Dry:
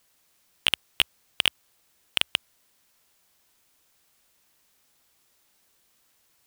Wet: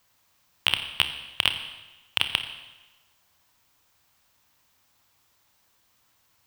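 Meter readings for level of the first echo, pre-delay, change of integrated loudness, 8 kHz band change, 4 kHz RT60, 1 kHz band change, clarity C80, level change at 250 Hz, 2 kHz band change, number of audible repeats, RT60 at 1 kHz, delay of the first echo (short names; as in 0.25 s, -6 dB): none, 27 ms, 0.0 dB, -4.0 dB, 1.1 s, +3.5 dB, 11.0 dB, +0.5 dB, +1.0 dB, none, 1.1 s, none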